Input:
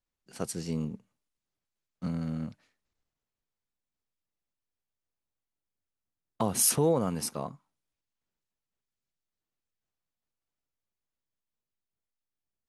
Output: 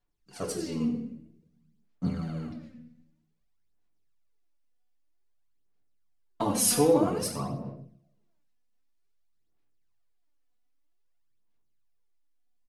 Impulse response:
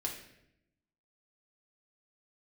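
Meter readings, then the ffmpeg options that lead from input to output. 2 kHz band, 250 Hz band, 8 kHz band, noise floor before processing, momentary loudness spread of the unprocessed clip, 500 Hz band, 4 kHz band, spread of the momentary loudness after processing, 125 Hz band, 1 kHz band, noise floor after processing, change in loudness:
+2.5 dB, +4.0 dB, 0.0 dB, below −85 dBFS, 16 LU, +3.5 dB, +2.5 dB, 18 LU, 0.0 dB, +3.0 dB, −70 dBFS, +1.5 dB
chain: -filter_complex "[0:a]highshelf=frequency=6700:gain=-4.5[link_01];[1:a]atrim=start_sample=2205[link_02];[link_01][link_02]afir=irnorm=-1:irlink=0,aphaser=in_gain=1:out_gain=1:delay=4.1:decay=0.61:speed=0.52:type=sinusoidal,aecho=1:1:93:0.178"

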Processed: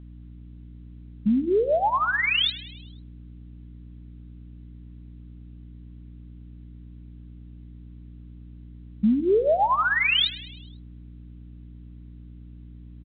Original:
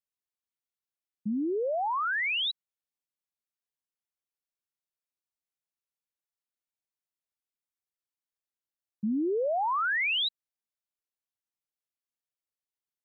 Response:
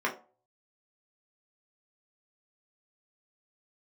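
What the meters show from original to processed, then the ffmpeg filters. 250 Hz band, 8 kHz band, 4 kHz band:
+7.5 dB, can't be measured, +6.5 dB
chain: -filter_complex "[0:a]lowpass=frequency=2100:poles=1,aecho=1:1:4.8:0.65,acrossover=split=1600[link_01][link_02];[link_01]acontrast=56[link_03];[link_02]crystalizer=i=7:c=0[link_04];[link_03][link_04]amix=inputs=2:normalize=0,aeval=exprs='val(0)+0.00794*(sin(2*PI*60*n/s)+sin(2*PI*2*60*n/s)/2+sin(2*PI*3*60*n/s)/3+sin(2*PI*4*60*n/s)/4+sin(2*PI*5*60*n/s)/5)':channel_layout=same,asplit=6[link_05][link_06][link_07][link_08][link_09][link_10];[link_06]adelay=104,afreqshift=51,volume=-17dB[link_11];[link_07]adelay=208,afreqshift=102,volume=-21.7dB[link_12];[link_08]adelay=312,afreqshift=153,volume=-26.5dB[link_13];[link_09]adelay=416,afreqshift=204,volume=-31.2dB[link_14];[link_10]adelay=520,afreqshift=255,volume=-35.9dB[link_15];[link_05][link_11][link_12][link_13][link_14][link_15]amix=inputs=6:normalize=0,asplit=2[link_16][link_17];[1:a]atrim=start_sample=2205,adelay=94[link_18];[link_17][link_18]afir=irnorm=-1:irlink=0,volume=-31.5dB[link_19];[link_16][link_19]amix=inputs=2:normalize=0" -ar 8000 -c:a pcm_alaw

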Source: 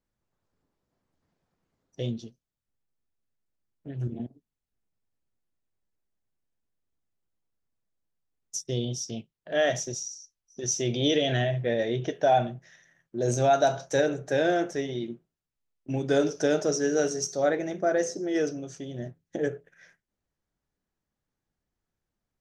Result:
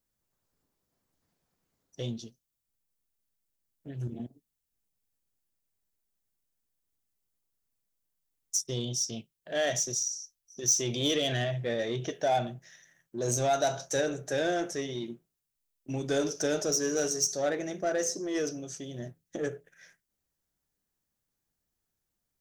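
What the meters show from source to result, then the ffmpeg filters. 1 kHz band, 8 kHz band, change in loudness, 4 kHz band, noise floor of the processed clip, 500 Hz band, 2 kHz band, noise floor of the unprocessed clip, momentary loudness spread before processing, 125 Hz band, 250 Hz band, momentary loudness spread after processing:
−5.0 dB, +4.5 dB, −3.0 dB, +0.5 dB, −84 dBFS, −5.0 dB, −3.5 dB, below −85 dBFS, 15 LU, −4.5 dB, −4.5 dB, 15 LU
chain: -filter_complex "[0:a]asplit=2[link_01][link_02];[link_02]asoftclip=type=tanh:threshold=-27.5dB,volume=-3.5dB[link_03];[link_01][link_03]amix=inputs=2:normalize=0,crystalizer=i=2.5:c=0,volume=-7.5dB"

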